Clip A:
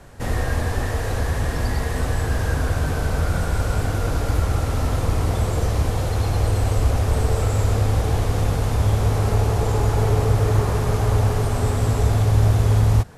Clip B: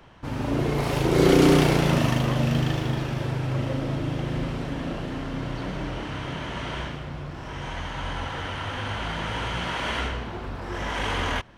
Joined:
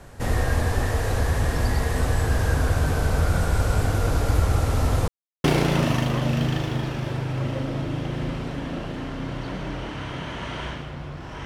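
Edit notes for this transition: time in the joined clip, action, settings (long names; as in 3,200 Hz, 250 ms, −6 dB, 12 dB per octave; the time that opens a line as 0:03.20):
clip A
0:05.08–0:05.44: silence
0:05.44: continue with clip B from 0:01.58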